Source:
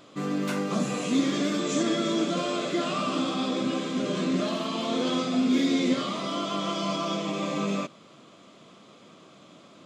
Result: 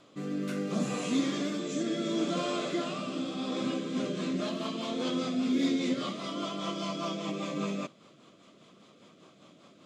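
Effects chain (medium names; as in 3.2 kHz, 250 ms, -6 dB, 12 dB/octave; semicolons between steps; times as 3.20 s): rotary cabinet horn 0.7 Hz, later 5 Hz, at 3.35 s; trim -3 dB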